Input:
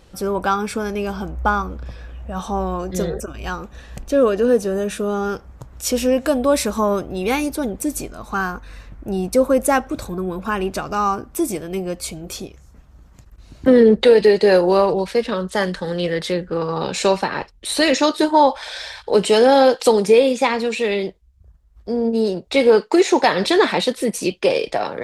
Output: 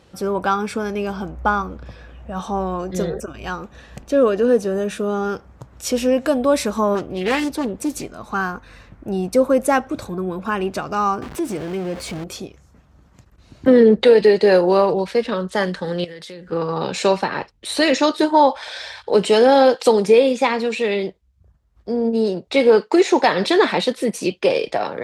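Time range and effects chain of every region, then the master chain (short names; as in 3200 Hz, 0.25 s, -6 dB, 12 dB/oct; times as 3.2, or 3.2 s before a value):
6.95–8.04 dynamic EQ 4000 Hz, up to +4 dB, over -40 dBFS, Q 0.96 + Doppler distortion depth 0.31 ms
11.22–12.24 zero-crossing step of -26 dBFS + high shelf 6300 Hz -8 dB + compressor 1.5:1, threshold -26 dBFS
16.04–16.52 high shelf 3100 Hz +10 dB + compressor 20:1, threshold -31 dBFS
whole clip: HPF 82 Hz 12 dB/oct; high shelf 8100 Hz -8.5 dB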